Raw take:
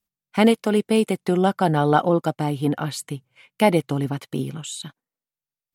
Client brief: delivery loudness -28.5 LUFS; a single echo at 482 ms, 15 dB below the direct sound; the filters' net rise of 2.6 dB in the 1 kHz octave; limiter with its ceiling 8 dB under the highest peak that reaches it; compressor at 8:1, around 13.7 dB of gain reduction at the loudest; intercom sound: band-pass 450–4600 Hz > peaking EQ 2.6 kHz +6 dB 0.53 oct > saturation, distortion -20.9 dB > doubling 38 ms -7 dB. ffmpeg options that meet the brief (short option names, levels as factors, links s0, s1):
-filter_complex "[0:a]equalizer=f=1000:t=o:g=4,acompressor=threshold=0.0562:ratio=8,alimiter=limit=0.0891:level=0:latency=1,highpass=450,lowpass=4600,equalizer=f=2600:t=o:w=0.53:g=6,aecho=1:1:482:0.178,asoftclip=threshold=0.0668,asplit=2[s0][s1];[s1]adelay=38,volume=0.447[s2];[s0][s2]amix=inputs=2:normalize=0,volume=2.66"